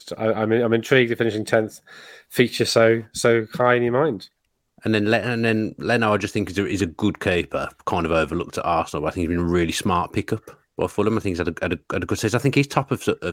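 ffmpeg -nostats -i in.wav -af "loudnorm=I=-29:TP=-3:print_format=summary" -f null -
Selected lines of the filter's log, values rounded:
Input Integrated:    -21.9 LUFS
Input True Peak:      -2.3 dBTP
Input LRA:             3.1 LU
Input Threshold:     -32.1 LUFS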